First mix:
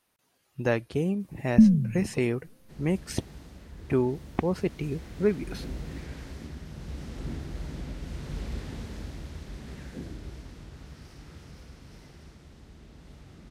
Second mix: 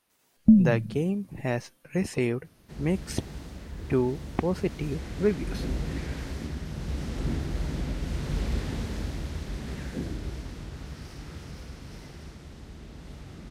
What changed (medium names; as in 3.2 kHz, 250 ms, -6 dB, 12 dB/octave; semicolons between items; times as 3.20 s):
first sound: entry -1.10 s; second sound +6.0 dB